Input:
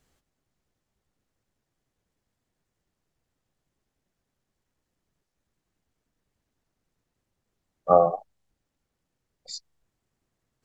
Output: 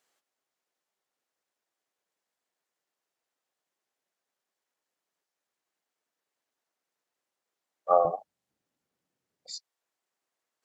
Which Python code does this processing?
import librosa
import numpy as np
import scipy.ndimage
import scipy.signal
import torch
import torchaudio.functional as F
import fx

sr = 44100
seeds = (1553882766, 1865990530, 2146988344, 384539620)

y = fx.highpass(x, sr, hz=fx.steps((0.0, 550.0), (8.05, 170.0), (9.55, 580.0)), slope=12)
y = F.gain(torch.from_numpy(y), -2.5).numpy()